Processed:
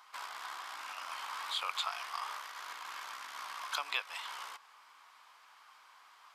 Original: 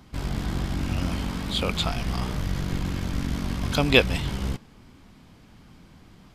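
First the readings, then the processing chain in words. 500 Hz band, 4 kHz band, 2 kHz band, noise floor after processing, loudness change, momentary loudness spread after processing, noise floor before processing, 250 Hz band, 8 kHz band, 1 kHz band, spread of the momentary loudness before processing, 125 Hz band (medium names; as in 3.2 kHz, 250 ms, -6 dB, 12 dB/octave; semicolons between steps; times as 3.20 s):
-26.5 dB, -10.0 dB, -11.0 dB, -61 dBFS, -13.5 dB, 23 LU, -52 dBFS, under -40 dB, -8.5 dB, -4.0 dB, 11 LU, under -40 dB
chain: compression 5:1, threshold -28 dBFS, peak gain reduction 15.5 dB; ladder high-pass 930 Hz, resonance 55%; trim +6.5 dB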